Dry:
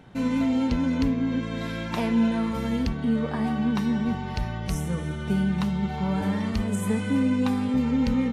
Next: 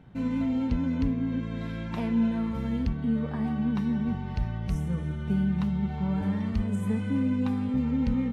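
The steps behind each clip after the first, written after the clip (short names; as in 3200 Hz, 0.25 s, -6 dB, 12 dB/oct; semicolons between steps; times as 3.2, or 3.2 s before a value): tone controls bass +8 dB, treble -7 dB; gain -7.5 dB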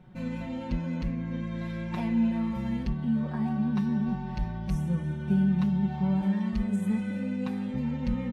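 comb 5.5 ms, depth 100%; gain -3.5 dB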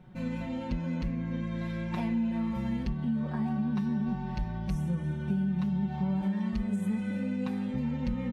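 compressor, threshold -26 dBFS, peak gain reduction 6 dB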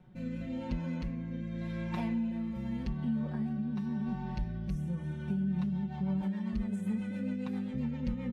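rotary speaker horn 0.9 Hz, later 7.5 Hz, at 5.11; gain -2 dB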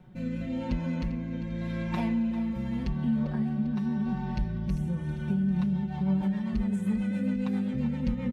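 feedback echo 0.397 s, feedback 59%, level -14 dB; gain +5 dB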